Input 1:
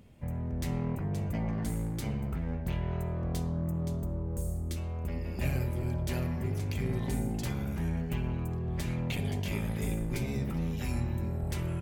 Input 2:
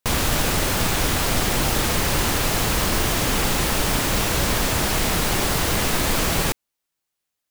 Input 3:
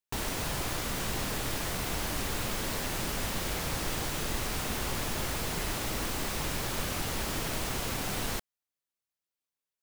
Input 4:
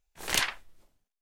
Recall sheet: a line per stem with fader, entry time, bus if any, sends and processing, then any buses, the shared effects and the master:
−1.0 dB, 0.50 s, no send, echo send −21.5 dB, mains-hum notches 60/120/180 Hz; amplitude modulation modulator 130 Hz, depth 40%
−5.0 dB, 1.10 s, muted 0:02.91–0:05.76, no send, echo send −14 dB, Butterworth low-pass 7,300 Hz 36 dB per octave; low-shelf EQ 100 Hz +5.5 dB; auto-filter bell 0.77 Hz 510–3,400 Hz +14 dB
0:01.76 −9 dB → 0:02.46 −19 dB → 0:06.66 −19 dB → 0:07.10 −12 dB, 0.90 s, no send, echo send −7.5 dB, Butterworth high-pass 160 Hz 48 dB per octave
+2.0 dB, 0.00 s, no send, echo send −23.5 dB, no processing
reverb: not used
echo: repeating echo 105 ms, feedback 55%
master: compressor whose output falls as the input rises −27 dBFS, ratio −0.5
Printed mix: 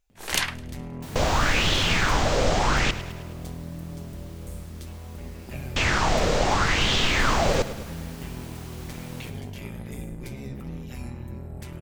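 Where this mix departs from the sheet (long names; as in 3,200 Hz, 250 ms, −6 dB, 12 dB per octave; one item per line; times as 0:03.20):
stem 1: entry 0.50 s → 0.10 s
master: missing compressor whose output falls as the input rises −27 dBFS, ratio −0.5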